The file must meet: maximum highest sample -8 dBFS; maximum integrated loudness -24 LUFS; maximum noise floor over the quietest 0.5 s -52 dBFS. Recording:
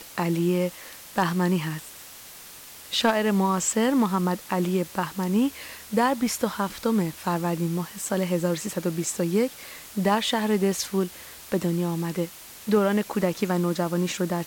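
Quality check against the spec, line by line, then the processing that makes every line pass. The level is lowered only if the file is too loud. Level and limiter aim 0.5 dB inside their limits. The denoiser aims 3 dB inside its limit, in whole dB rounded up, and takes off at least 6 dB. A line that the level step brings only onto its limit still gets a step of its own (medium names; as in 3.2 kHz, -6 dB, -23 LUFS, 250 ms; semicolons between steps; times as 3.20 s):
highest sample -11.0 dBFS: pass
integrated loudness -25.5 LUFS: pass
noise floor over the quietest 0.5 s -44 dBFS: fail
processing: noise reduction 11 dB, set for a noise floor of -44 dBFS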